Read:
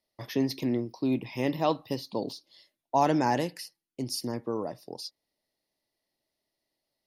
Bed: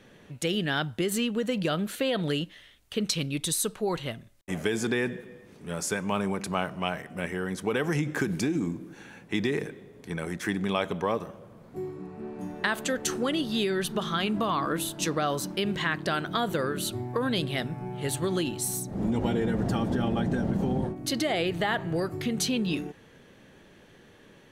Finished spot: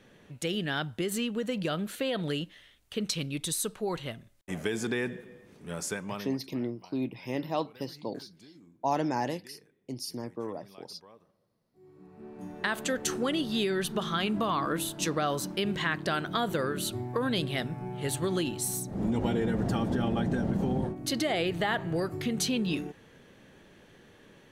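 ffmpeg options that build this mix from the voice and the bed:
-filter_complex "[0:a]adelay=5900,volume=0.596[s0];[1:a]volume=12.6,afade=t=out:st=5.85:d=0.55:silence=0.0668344,afade=t=in:st=11.79:d=1.06:silence=0.0530884[s1];[s0][s1]amix=inputs=2:normalize=0"

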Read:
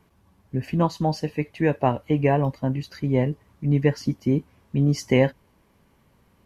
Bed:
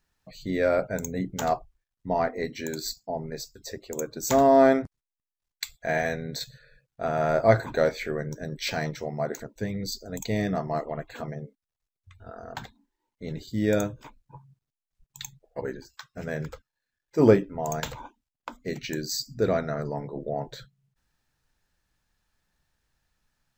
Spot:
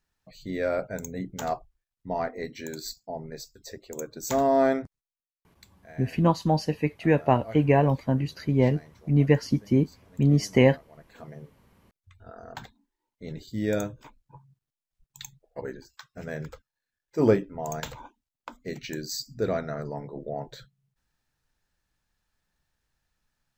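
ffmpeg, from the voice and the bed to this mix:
-filter_complex "[0:a]adelay=5450,volume=1[s0];[1:a]volume=5.31,afade=t=out:st=4.87:d=0.43:silence=0.133352,afade=t=in:st=10.91:d=0.78:silence=0.11885[s1];[s0][s1]amix=inputs=2:normalize=0"

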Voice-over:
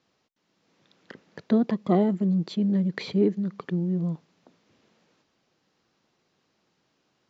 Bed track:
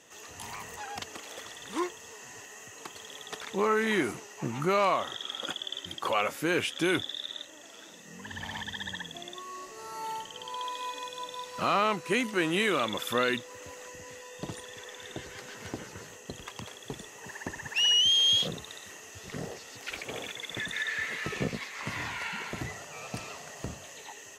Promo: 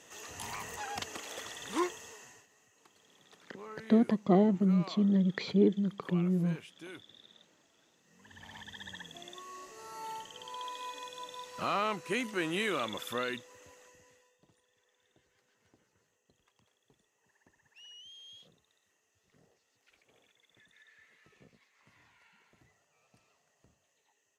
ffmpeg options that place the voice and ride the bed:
-filter_complex "[0:a]adelay=2400,volume=0.708[s0];[1:a]volume=5.62,afade=t=out:st=1.92:d=0.55:silence=0.0944061,afade=t=in:st=8.03:d=1.31:silence=0.177828,afade=t=out:st=12.85:d=1.54:silence=0.0630957[s1];[s0][s1]amix=inputs=2:normalize=0"

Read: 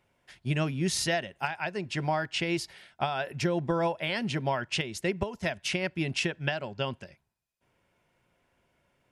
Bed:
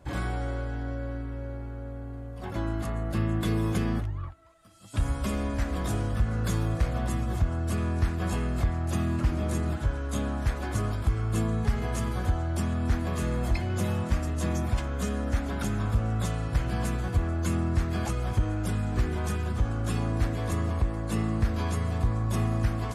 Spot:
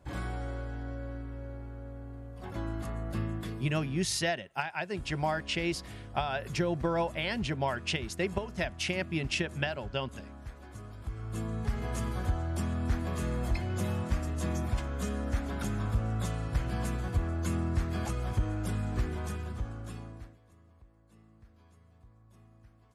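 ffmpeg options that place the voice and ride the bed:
-filter_complex "[0:a]adelay=3150,volume=0.794[s0];[1:a]volume=2.37,afade=t=out:st=3.17:d=0.48:silence=0.266073,afade=t=in:st=10.9:d=1.08:silence=0.223872,afade=t=out:st=18.88:d=1.51:silence=0.0398107[s1];[s0][s1]amix=inputs=2:normalize=0"

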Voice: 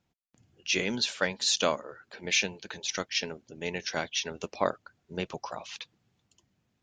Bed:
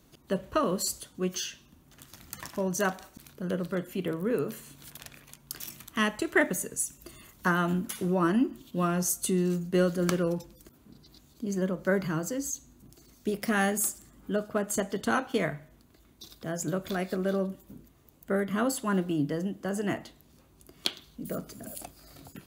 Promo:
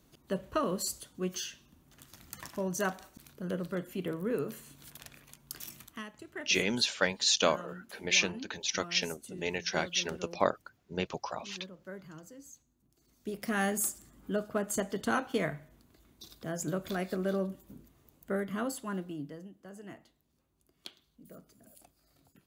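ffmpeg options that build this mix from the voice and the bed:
-filter_complex "[0:a]adelay=5800,volume=1[s0];[1:a]volume=3.76,afade=t=out:st=5.82:d=0.21:silence=0.188365,afade=t=in:st=12.9:d=0.84:silence=0.16788,afade=t=out:st=18:d=1.49:silence=0.199526[s1];[s0][s1]amix=inputs=2:normalize=0"

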